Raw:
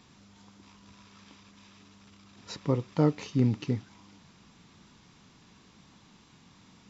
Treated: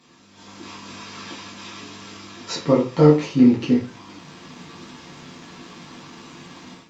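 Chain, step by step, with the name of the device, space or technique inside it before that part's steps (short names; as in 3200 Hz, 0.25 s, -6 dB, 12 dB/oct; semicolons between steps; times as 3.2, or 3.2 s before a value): far-field microphone of a smart speaker (reverb RT60 0.35 s, pre-delay 5 ms, DRR -5 dB; HPF 150 Hz 12 dB/oct; AGC gain up to 14.5 dB; gain -1 dB; Opus 48 kbps 48000 Hz)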